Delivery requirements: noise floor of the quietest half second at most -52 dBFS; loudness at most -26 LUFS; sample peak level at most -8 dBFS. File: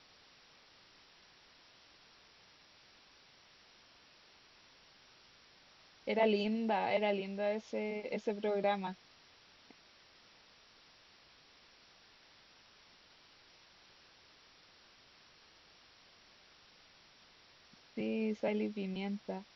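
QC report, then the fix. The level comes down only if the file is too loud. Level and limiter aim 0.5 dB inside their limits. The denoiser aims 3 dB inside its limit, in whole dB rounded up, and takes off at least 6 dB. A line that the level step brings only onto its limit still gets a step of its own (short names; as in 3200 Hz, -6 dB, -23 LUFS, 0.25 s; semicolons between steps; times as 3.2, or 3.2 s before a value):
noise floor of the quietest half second -63 dBFS: OK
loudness -36.0 LUFS: OK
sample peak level -19.0 dBFS: OK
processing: none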